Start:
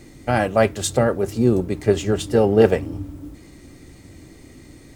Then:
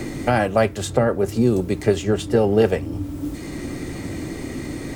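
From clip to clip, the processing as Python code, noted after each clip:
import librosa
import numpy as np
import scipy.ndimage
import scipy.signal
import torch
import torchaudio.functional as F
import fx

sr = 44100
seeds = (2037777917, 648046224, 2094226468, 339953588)

y = fx.band_squash(x, sr, depth_pct=70)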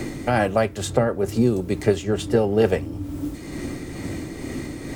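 y = x * (1.0 - 0.37 / 2.0 + 0.37 / 2.0 * np.cos(2.0 * np.pi * 2.2 * (np.arange(len(x)) / sr)))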